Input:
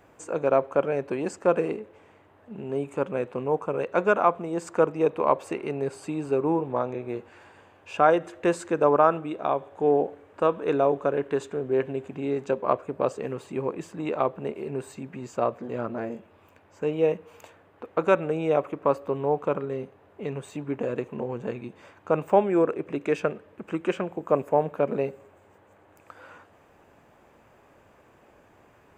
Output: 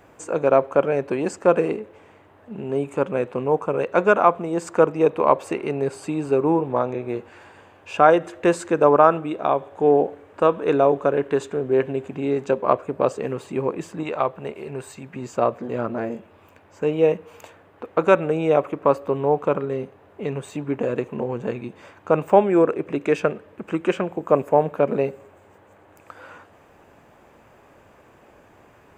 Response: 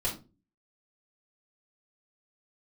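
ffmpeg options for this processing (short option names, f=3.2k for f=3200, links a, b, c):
-filter_complex "[0:a]asettb=1/sr,asplit=3[a][b][c];[a]atrim=end=14.034[d];[b]atrim=start=14.03:end=15.16,asetpts=PTS-STARTPTS,afade=t=in:d=0.004:c=qsin,afade=t=out:st=1.126:d=0.004:c=qsin,equalizer=f=270:t=o:w=1.9:g=-7.5[e];[c]atrim=start=15.156[f];[d][e]acrossfade=d=0.004:c1=hsin:c2=qsin[g];[g][f]acrossfade=d=0.004:c1=qsin:c2=hsin,volume=5dB"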